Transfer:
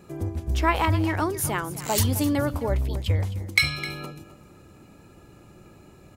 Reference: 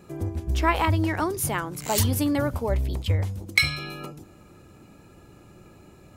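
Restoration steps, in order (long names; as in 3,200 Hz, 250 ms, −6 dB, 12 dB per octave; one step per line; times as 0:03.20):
echo removal 259 ms −15 dB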